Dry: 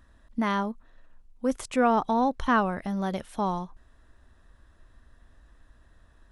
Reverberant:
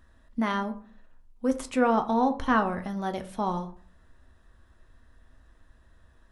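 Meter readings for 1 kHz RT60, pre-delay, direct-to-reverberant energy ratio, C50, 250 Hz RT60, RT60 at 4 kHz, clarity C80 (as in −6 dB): 0.45 s, 6 ms, 6.0 dB, 14.0 dB, 0.55 s, 0.25 s, 18.5 dB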